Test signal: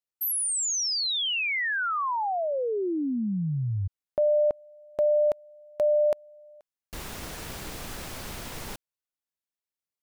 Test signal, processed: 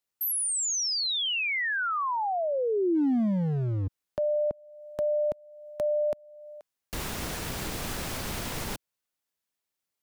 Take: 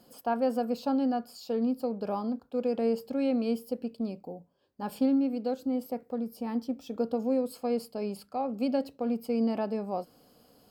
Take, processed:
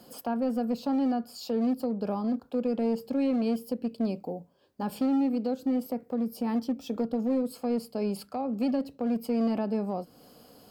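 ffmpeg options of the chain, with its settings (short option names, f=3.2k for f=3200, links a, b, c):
-filter_complex "[0:a]lowshelf=f=62:g=-5,acrossover=split=280[a][b];[a]asoftclip=type=hard:threshold=-34dB[c];[b]acompressor=threshold=-34dB:ratio=5:attack=0.23:release=804:knee=1:detection=peak[d];[c][d]amix=inputs=2:normalize=0,volume=6.5dB"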